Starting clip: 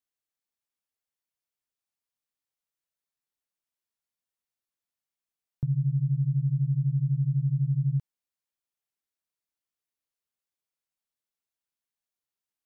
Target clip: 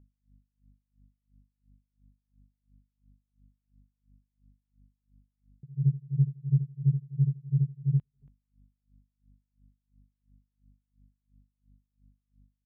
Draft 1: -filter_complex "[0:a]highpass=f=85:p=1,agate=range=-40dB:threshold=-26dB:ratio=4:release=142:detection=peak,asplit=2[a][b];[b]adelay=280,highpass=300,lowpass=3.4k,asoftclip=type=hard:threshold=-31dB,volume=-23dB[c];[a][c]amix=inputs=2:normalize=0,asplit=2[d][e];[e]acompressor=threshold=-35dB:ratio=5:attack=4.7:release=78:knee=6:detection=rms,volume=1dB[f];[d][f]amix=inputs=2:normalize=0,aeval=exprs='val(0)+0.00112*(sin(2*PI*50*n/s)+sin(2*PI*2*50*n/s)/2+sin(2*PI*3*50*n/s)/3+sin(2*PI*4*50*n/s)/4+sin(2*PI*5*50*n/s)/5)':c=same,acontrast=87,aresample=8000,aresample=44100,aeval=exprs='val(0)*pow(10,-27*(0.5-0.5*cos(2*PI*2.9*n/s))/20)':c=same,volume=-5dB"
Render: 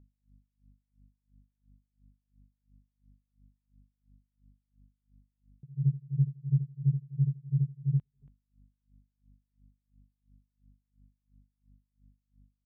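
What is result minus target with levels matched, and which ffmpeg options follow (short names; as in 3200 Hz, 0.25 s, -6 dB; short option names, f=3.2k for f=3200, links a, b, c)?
compressor: peak gain reduction +6.5 dB
-filter_complex "[0:a]highpass=f=85:p=1,agate=range=-40dB:threshold=-26dB:ratio=4:release=142:detection=peak,asplit=2[a][b];[b]adelay=280,highpass=300,lowpass=3.4k,asoftclip=type=hard:threshold=-31dB,volume=-23dB[c];[a][c]amix=inputs=2:normalize=0,asplit=2[d][e];[e]acompressor=threshold=-26.5dB:ratio=5:attack=4.7:release=78:knee=6:detection=rms,volume=1dB[f];[d][f]amix=inputs=2:normalize=0,aeval=exprs='val(0)+0.00112*(sin(2*PI*50*n/s)+sin(2*PI*2*50*n/s)/2+sin(2*PI*3*50*n/s)/3+sin(2*PI*4*50*n/s)/4+sin(2*PI*5*50*n/s)/5)':c=same,acontrast=87,aresample=8000,aresample=44100,aeval=exprs='val(0)*pow(10,-27*(0.5-0.5*cos(2*PI*2.9*n/s))/20)':c=same,volume=-5dB"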